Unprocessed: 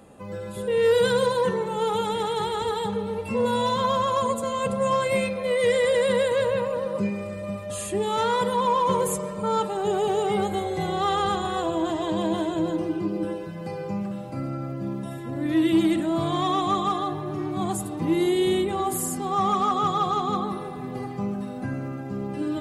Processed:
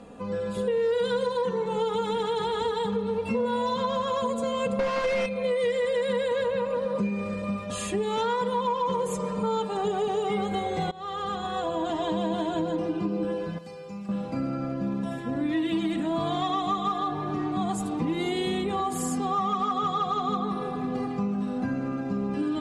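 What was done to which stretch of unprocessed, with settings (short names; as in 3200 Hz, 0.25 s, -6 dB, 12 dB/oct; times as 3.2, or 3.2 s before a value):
4.79–5.26 overdrive pedal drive 36 dB, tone 1500 Hz, clips at -12 dBFS
10.91–12.39 fade in, from -22 dB
13.58–14.09 pre-emphasis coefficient 0.8
whole clip: LPF 6300 Hz 12 dB/oct; comb 4.2 ms, depth 57%; compressor 5:1, threshold -27 dBFS; gain +2.5 dB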